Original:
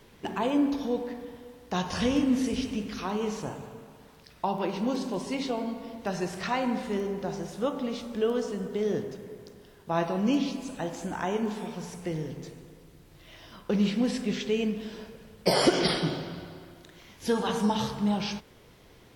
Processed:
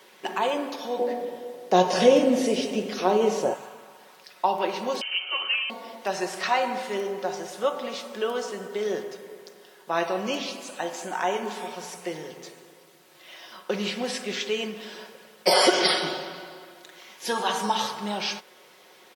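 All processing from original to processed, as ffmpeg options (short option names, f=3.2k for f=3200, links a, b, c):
-filter_complex "[0:a]asettb=1/sr,asplit=3[a][b][c];[a]atrim=end=0.994[d];[b]atrim=start=0.99:end=3.54,asetpts=PTS-STARTPTS,afade=t=in:d=0.004:c=qsin,afade=t=out:st=2.546:d=0.004:c=qsin,lowshelf=f=790:t=q:w=1.5:g=9.5,asplit=2[e][f];[f]adelay=22,volume=-13dB[g];[e][g]amix=inputs=2:normalize=0,atrim=end_sample=112455[h];[c]atrim=start=3.536[i];[d][h]acrossfade=d=0.004:c1=hsin:c2=qsin[j];[j][i]acrossfade=d=0.004:c1=qsin:c2=hsin,asettb=1/sr,asplit=3[k][l][m];[k]atrim=end=5.014[n];[l]atrim=start=5.01:end=5.7,asetpts=PTS-STARTPTS,afade=t=in:d=0.004:c=qsin,afade=t=out:st=0.686:d=0.004:c=qsin,aemphasis=mode=production:type=bsi,aeval=exprs='0.0596*(abs(mod(val(0)/0.0596+3,4)-2)-1)':c=same,lowpass=f=2.8k:t=q:w=0.5098,lowpass=f=2.8k:t=q:w=0.6013,lowpass=f=2.8k:t=q:w=0.9,lowpass=f=2.8k:t=q:w=2.563,afreqshift=-3300[o];[m]atrim=start=5.696[p];[n][o]acrossfade=d=0.004:c1=hsin:c2=qsin[q];[q][p]acrossfade=d=0.004:c1=qsin:c2=hsin,highpass=510,aecho=1:1:5.4:0.48,volume=5.5dB"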